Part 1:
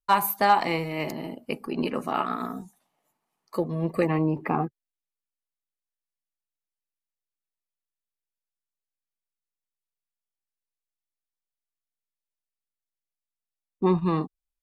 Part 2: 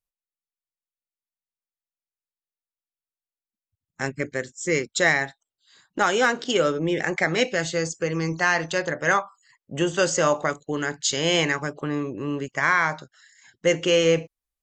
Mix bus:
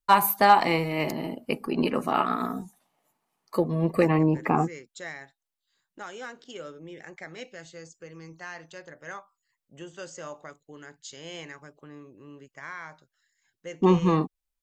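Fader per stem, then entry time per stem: +2.5, -19.0 dB; 0.00, 0.00 s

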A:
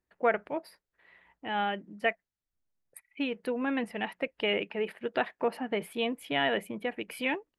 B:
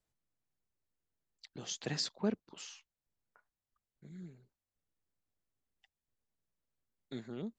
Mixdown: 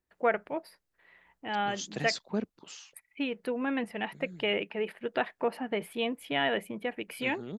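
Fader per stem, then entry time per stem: -0.5, +1.5 dB; 0.00, 0.10 s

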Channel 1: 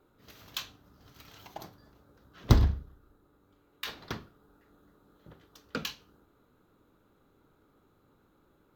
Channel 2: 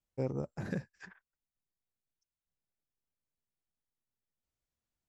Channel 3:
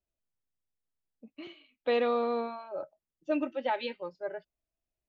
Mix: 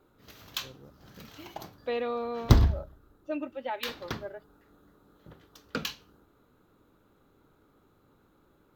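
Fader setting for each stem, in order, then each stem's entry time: +2.0, -16.0, -4.0 dB; 0.00, 0.45, 0.00 s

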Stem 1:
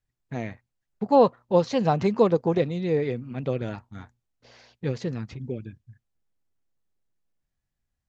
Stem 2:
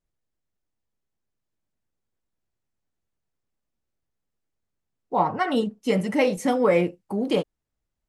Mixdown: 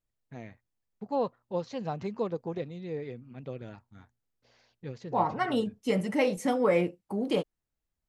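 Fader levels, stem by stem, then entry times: -12.0, -5.0 dB; 0.00, 0.00 s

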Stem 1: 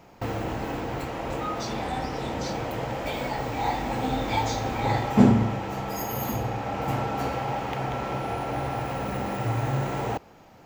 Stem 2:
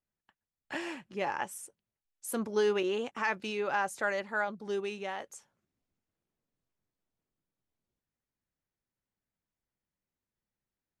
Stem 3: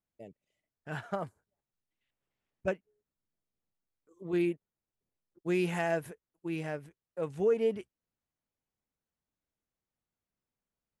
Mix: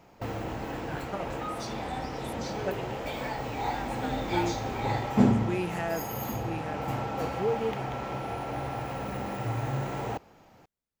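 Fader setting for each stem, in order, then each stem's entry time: -4.5, -11.5, -2.0 dB; 0.00, 0.00, 0.00 s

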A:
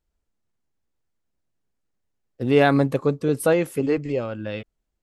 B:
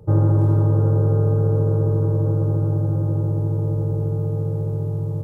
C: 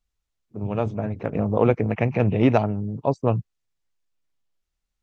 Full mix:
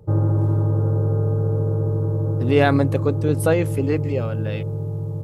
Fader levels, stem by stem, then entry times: 0.0 dB, -2.5 dB, off; 0.00 s, 0.00 s, off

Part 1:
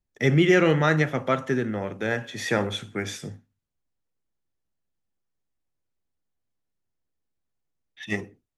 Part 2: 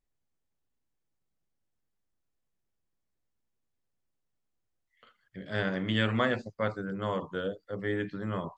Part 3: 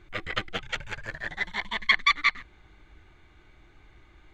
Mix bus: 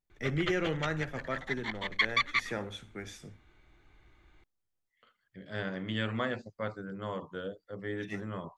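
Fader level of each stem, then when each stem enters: -12.5, -5.5, -6.5 dB; 0.00, 0.00, 0.10 s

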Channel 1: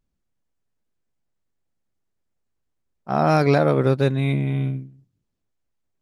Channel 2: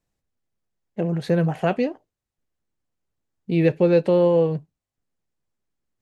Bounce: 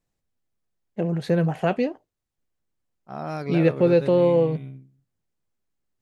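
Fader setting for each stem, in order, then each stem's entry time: -13.5, -1.0 dB; 0.00, 0.00 s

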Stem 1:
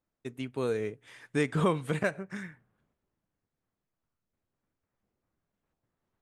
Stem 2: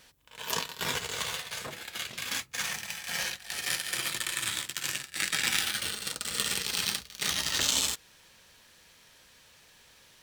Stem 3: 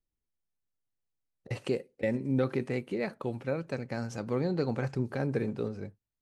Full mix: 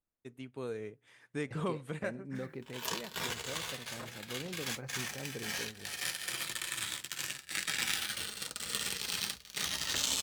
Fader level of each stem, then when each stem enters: -9.0, -5.5, -13.0 dB; 0.00, 2.35, 0.00 s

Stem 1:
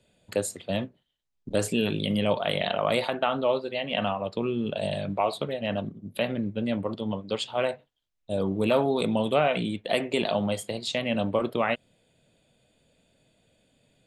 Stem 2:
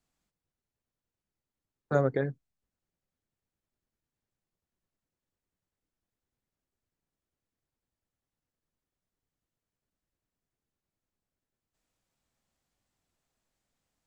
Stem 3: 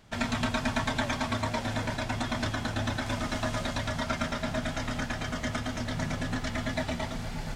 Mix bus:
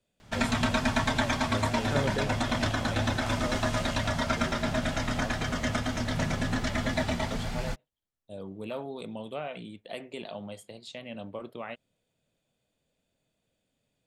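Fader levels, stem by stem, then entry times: -13.5, -4.5, +2.5 dB; 0.00, 0.00, 0.20 s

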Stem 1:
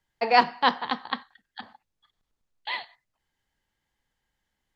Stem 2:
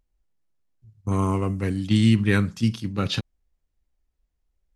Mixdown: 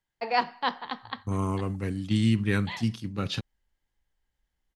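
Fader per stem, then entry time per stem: -6.5, -5.5 dB; 0.00, 0.20 s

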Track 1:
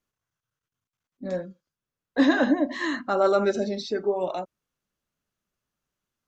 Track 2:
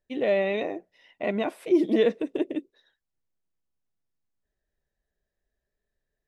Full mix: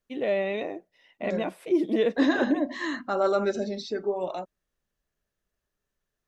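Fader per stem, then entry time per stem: -3.0, -2.5 dB; 0.00, 0.00 s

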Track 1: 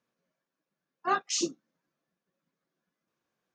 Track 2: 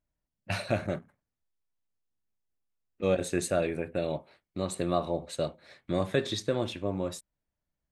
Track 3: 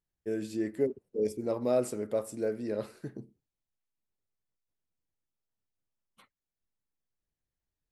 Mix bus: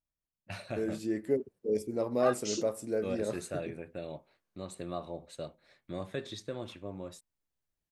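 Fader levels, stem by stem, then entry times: -7.0, -10.0, -0.5 dB; 1.15, 0.00, 0.50 s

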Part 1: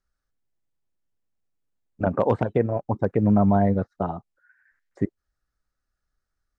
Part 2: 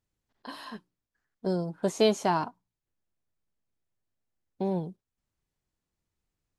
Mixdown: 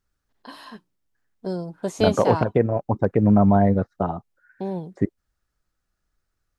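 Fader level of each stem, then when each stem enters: +2.5, +0.5 dB; 0.00, 0.00 s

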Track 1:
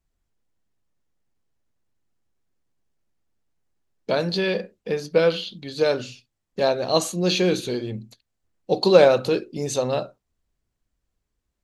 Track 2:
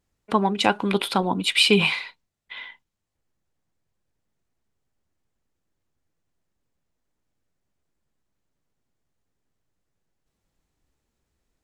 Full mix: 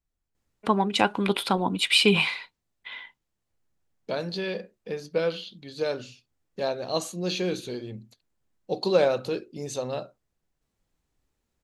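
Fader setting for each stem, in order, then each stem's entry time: -7.5, -2.0 dB; 0.00, 0.35 s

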